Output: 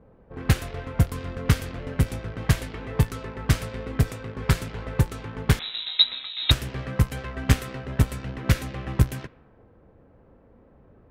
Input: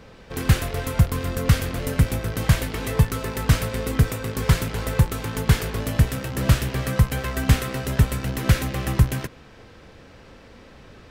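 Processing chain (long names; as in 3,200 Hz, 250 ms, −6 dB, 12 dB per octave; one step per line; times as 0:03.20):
low-pass that shuts in the quiet parts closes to 770 Hz, open at −14.5 dBFS
harmonic generator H 3 −14 dB, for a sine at −3.5 dBFS
0:05.59–0:06.51: voice inversion scrambler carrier 3,900 Hz
level +1 dB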